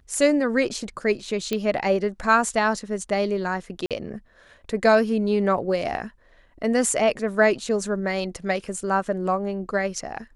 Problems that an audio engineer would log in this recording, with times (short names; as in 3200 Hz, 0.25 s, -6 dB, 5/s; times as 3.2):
1.53 pop -12 dBFS
3.86–3.91 gap 47 ms